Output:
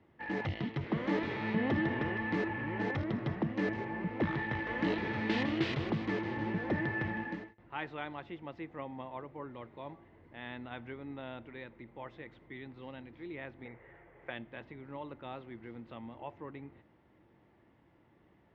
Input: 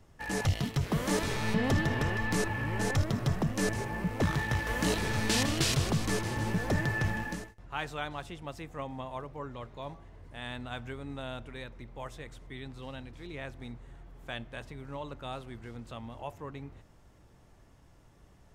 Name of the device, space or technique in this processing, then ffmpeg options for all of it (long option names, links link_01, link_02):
guitar cabinet: -filter_complex "[0:a]asettb=1/sr,asplit=3[link_01][link_02][link_03];[link_01]atrim=end=13.654[link_04];[link_02]atrim=start=13.65:end=14.3,asetpts=PTS-STARTPTS,afade=type=in:duration=0.004:curve=qsin,afade=type=out:start_time=0.646:duration=0.004:curve=qsin,equalizer=frequency=250:width_type=o:width=1:gain=-10,equalizer=frequency=500:width_type=o:width=1:gain=10,equalizer=frequency=2000:width_type=o:width=1:gain=11,equalizer=frequency=4000:width_type=o:width=1:gain=-8[link_05];[link_03]atrim=start=14.296[link_06];[link_04][link_05]acrossfade=duration=0.004:curve1=hsin:curve2=qsin[link_07];[link_07][link_06]acrossfade=duration=0.004:curve1=qsin:curve2=hsin,highpass=100,equalizer=frequency=220:width_type=q:width=4:gain=5,equalizer=frequency=330:width_type=q:width=4:gain=10,equalizer=frequency=510:width_type=q:width=4:gain=3,equalizer=frequency=880:width_type=q:width=4:gain=4,equalizer=frequency=2000:width_type=q:width=4:gain=7,lowpass=frequency=3500:width=0.5412,lowpass=frequency=3500:width=1.3066,volume=-6.5dB"